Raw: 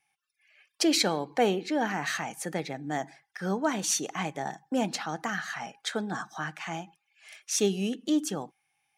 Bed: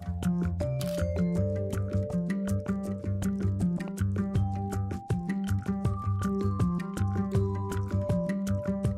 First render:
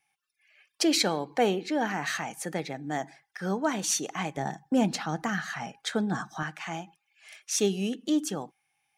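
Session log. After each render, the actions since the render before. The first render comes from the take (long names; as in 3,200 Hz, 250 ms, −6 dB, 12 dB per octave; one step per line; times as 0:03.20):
0:04.37–0:06.43: low-shelf EQ 210 Hz +11.5 dB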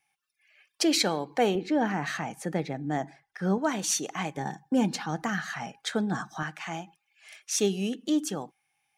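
0:01.55–0:03.58: spectral tilt −2 dB per octave
0:04.34–0:05.10: notch comb filter 660 Hz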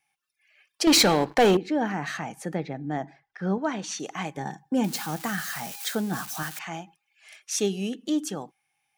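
0:00.87–0:01.57: leveller curve on the samples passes 3
0:02.55–0:04.00: high-frequency loss of the air 110 metres
0:04.84–0:06.59: spike at every zero crossing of −27 dBFS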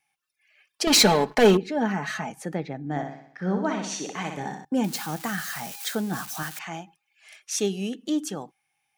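0:00.84–0:02.30: comb filter 4.7 ms
0:02.80–0:04.65: flutter between parallel walls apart 10.5 metres, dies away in 0.64 s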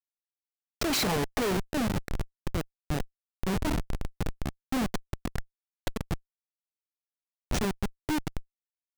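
comparator with hysteresis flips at −22.5 dBFS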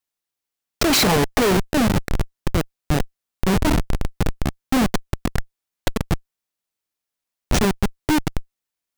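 level +10.5 dB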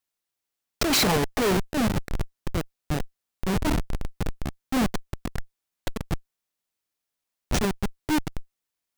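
brickwall limiter −20 dBFS, peak gain reduction 9.5 dB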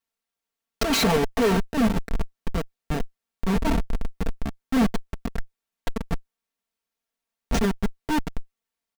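high-shelf EQ 3,800 Hz −6.5 dB
comb filter 4.4 ms, depth 67%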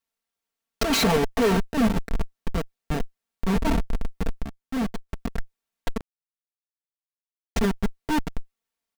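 0:04.43–0:05.09: clip gain −6 dB
0:06.01–0:07.56: silence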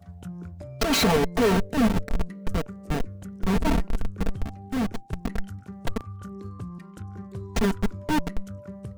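mix in bed −9.5 dB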